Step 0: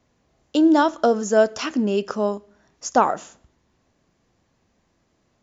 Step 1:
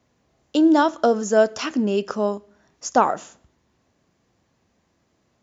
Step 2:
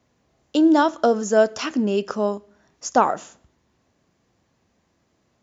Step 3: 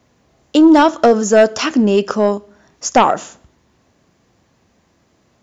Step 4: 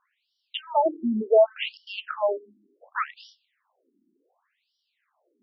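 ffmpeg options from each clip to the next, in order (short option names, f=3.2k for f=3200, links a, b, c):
-af "highpass=55"
-af anull
-af "aeval=exprs='0.668*sin(PI/2*1.78*val(0)/0.668)':c=same"
-af "afftfilt=real='re*between(b*sr/1024,260*pow(4100/260,0.5+0.5*sin(2*PI*0.68*pts/sr))/1.41,260*pow(4100/260,0.5+0.5*sin(2*PI*0.68*pts/sr))*1.41)':imag='im*between(b*sr/1024,260*pow(4100/260,0.5+0.5*sin(2*PI*0.68*pts/sr))/1.41,260*pow(4100/260,0.5+0.5*sin(2*PI*0.68*pts/sr))*1.41)':win_size=1024:overlap=0.75,volume=-6dB"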